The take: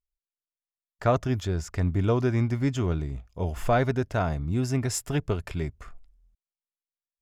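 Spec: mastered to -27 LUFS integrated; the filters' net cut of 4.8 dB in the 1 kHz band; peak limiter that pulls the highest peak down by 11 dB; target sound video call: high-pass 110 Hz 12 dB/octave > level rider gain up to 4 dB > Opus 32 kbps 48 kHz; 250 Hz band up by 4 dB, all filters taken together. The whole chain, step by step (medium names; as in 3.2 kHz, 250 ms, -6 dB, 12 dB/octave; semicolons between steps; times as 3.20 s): peaking EQ 250 Hz +5.5 dB; peaking EQ 1 kHz -8.5 dB; peak limiter -22.5 dBFS; high-pass 110 Hz 12 dB/octave; level rider gain up to 4 dB; trim +6.5 dB; Opus 32 kbps 48 kHz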